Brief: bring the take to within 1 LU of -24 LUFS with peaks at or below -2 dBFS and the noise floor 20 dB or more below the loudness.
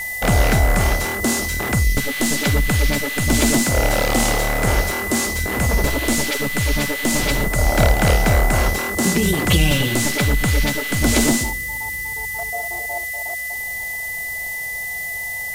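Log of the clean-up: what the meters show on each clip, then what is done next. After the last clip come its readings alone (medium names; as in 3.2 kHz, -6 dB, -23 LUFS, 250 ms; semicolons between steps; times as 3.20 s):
steady tone 2 kHz; tone level -25 dBFS; noise floor -27 dBFS; noise floor target -39 dBFS; loudness -19.0 LUFS; peak level -2.5 dBFS; loudness target -24.0 LUFS
-> band-stop 2 kHz, Q 30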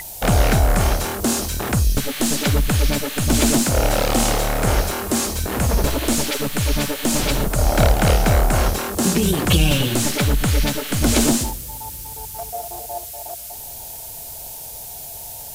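steady tone not found; noise floor -34 dBFS; noise floor target -40 dBFS
-> noise print and reduce 6 dB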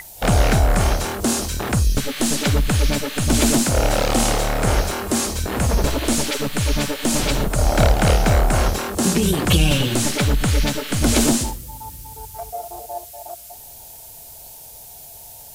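noise floor -40 dBFS; loudness -19.5 LUFS; peak level -3.0 dBFS; loudness target -24.0 LUFS
-> trim -4.5 dB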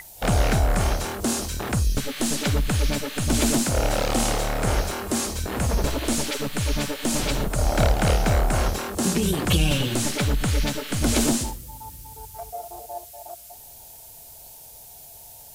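loudness -24.0 LUFS; peak level -7.5 dBFS; noise floor -45 dBFS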